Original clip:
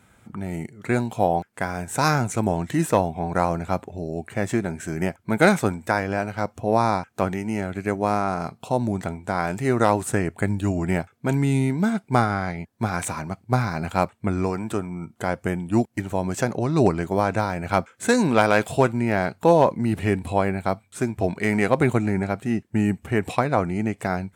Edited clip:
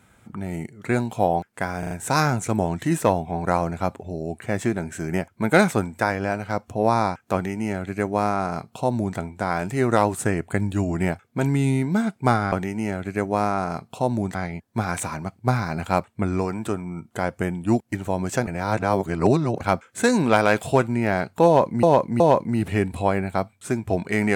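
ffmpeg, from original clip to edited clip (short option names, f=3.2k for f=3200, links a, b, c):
-filter_complex "[0:a]asplit=10[a][b][c][d][e][f][g][h][i][j];[a]atrim=end=1.832[k];[b]atrim=start=1.788:end=1.832[l];[c]atrim=start=1.788:end=1.832[m];[d]atrim=start=1.788:end=12.402[n];[e]atrim=start=7.218:end=9.052[o];[f]atrim=start=12.398:end=16.522[p];[g]atrim=start=16.518:end=17.662,asetpts=PTS-STARTPTS,areverse[q];[h]atrim=start=17.658:end=19.882[r];[i]atrim=start=19.508:end=19.882[s];[j]atrim=start=19.508[t];[k][l]acrossfade=d=0.004:c1=hsin:c2=hsin[u];[u][m]acrossfade=d=0.004:c1=hsin:c2=hsin[v];[v][n]acrossfade=d=0.004:c1=hsin:c2=hsin[w];[w][o]acrossfade=d=0.004:c1=hsin:c2=hsin[x];[x][p]acrossfade=d=0.004:c1=hsin:c2=hsin[y];[y][q]acrossfade=d=0.004:c1=hsin:c2=hsin[z];[z][r]acrossfade=d=0.004:c1=hsin:c2=hsin[aa];[aa][s]acrossfade=d=0.004:c1=hsin:c2=hsin[ab];[ab][t]acrossfade=d=0.004:c1=hsin:c2=hsin"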